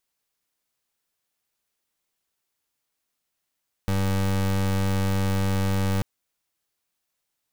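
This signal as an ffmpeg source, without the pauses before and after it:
ffmpeg -f lavfi -i "aevalsrc='0.0708*(2*lt(mod(96.6*t,1),0.28)-1)':duration=2.14:sample_rate=44100" out.wav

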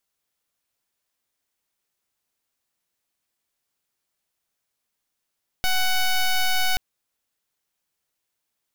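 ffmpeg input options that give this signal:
ffmpeg -f lavfi -i "aevalsrc='0.1*(2*lt(mod(745*t,1),0.09)-1)':duration=1.13:sample_rate=44100" out.wav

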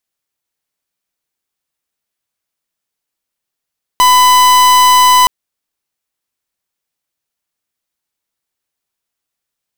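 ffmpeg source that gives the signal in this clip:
ffmpeg -f lavfi -i "aevalsrc='0.447*(2*lt(mod(1000*t,1),0.44)-1)':duration=1.27:sample_rate=44100" out.wav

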